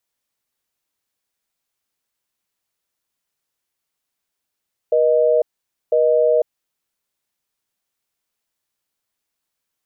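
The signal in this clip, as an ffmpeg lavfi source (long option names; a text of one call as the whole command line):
ffmpeg -f lavfi -i "aevalsrc='0.178*(sin(2*PI*480*t)+sin(2*PI*620*t))*clip(min(mod(t,1),0.5-mod(t,1))/0.005,0,1)':duration=1.67:sample_rate=44100" out.wav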